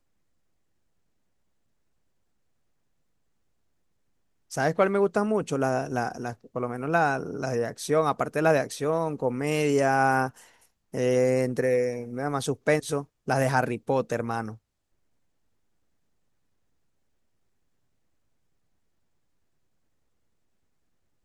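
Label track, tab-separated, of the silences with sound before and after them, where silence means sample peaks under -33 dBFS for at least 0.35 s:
10.290000	10.940000	silence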